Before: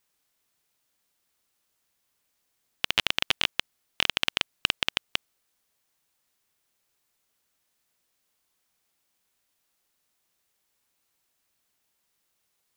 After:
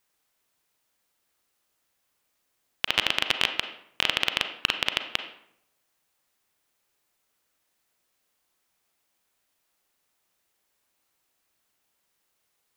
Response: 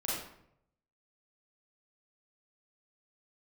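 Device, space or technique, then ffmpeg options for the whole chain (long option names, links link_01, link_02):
filtered reverb send: -filter_complex "[0:a]asplit=2[link_01][link_02];[link_02]highpass=270,lowpass=3200[link_03];[1:a]atrim=start_sample=2205[link_04];[link_03][link_04]afir=irnorm=-1:irlink=0,volume=-9dB[link_05];[link_01][link_05]amix=inputs=2:normalize=0"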